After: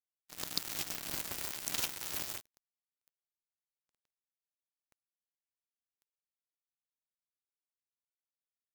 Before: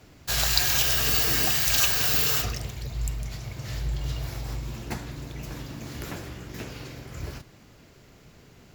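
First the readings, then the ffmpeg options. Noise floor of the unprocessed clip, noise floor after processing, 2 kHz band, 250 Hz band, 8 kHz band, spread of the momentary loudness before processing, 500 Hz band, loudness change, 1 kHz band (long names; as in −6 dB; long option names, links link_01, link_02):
−53 dBFS, below −85 dBFS, −17.5 dB, −17.5 dB, −14.5 dB, 19 LU, −17.0 dB, −13.5 dB, −15.5 dB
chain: -af "aeval=exprs='val(0)*sin(2*PI*230*n/s)':channel_layout=same,acrusher=bits=2:mix=0:aa=0.5,volume=-7.5dB"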